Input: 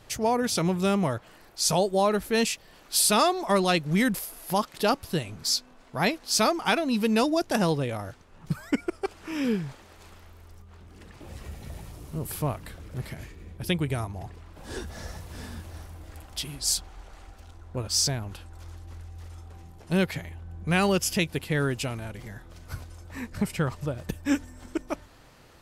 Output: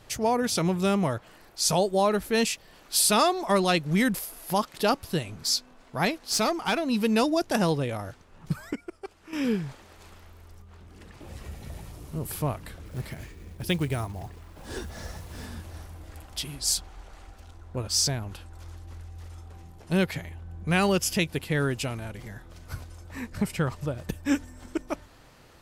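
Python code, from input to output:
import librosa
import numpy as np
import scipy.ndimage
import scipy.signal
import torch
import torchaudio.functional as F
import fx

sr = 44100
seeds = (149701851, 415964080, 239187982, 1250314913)

y = fx.tube_stage(x, sr, drive_db=17.0, bias=0.3, at=(6.05, 6.9))
y = fx.quant_companded(y, sr, bits=6, at=(12.85, 15.46))
y = fx.edit(y, sr, fx.clip_gain(start_s=8.73, length_s=0.6, db=-9.5), tone=tone)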